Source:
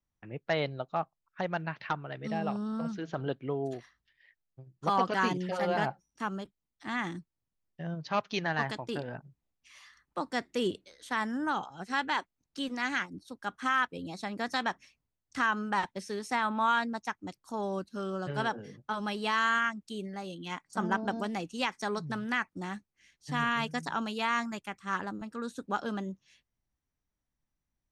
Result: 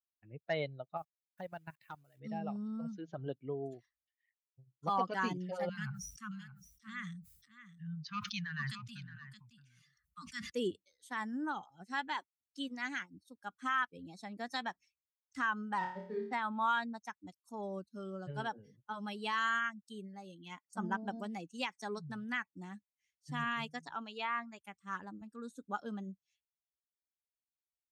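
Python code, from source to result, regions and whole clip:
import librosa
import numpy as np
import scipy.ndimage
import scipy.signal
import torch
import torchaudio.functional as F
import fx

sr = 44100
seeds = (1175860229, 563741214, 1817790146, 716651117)

y = fx.chain(x, sr, fx.level_steps(step_db=17),
    fx.quant_dither(seeds[0], bits=10, dither='none'), at=(0.97, 2.2))
y = fx.chain(y, sr, fx.cheby1_bandstop(low_hz=210.0, high_hz=1200.0, order=3),
    fx.echo_single(ms=621, db=-9.0),
    fx.sustainer(db_per_s=40.0), at=(5.69, 10.5))
y = fx.chain(y, sr, fx.dead_time(dead_ms=0.12),
    fx.lowpass(hz=2800.0, slope=12),
    fx.room_flutter(wall_m=4.7, rt60_s=0.76), at=(15.78, 16.33))
y = fx.chain(y, sr, fx.env_lowpass_down(base_hz=2500.0, full_db=-25.0),
    fx.peak_eq(hz=190.0, db=-8.5, octaves=0.49), at=(23.69, 24.6))
y = fx.bin_expand(y, sr, power=1.5)
y = scipy.signal.sosfilt(scipy.signal.butter(2, 57.0, 'highpass', fs=sr, output='sos'), y)
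y = y * librosa.db_to_amplitude(-3.5)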